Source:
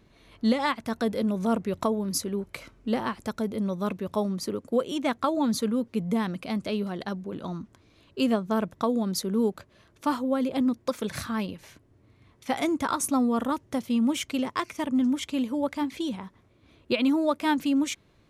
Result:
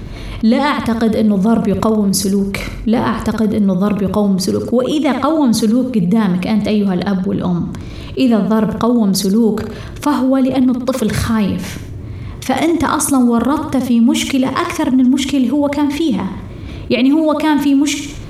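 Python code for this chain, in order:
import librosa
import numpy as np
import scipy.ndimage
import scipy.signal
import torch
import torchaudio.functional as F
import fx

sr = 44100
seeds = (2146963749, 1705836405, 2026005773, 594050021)

p1 = fx.low_shelf(x, sr, hz=220.0, db=11.5)
p2 = p1 + fx.echo_feedback(p1, sr, ms=61, feedback_pct=45, wet_db=-12.0, dry=0)
p3 = fx.env_flatten(p2, sr, amount_pct=50)
y = p3 * 10.0 ** (5.5 / 20.0)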